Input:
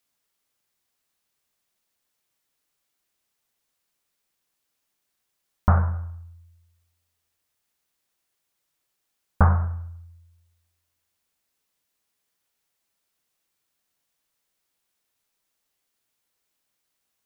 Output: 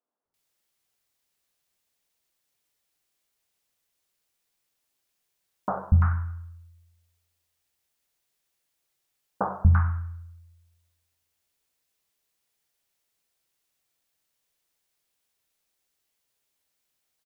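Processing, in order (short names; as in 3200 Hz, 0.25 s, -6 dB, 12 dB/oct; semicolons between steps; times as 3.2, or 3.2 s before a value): three bands offset in time mids, lows, highs 0.24/0.34 s, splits 230/1200 Hz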